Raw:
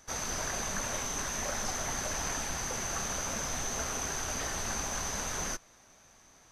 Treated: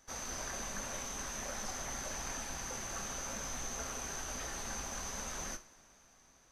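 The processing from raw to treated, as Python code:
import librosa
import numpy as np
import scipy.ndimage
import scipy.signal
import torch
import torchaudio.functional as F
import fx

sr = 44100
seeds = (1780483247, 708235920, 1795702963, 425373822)

y = fx.rev_double_slope(x, sr, seeds[0], early_s=0.33, late_s=4.1, knee_db=-22, drr_db=7.0)
y = F.gain(torch.from_numpy(y), -7.5).numpy()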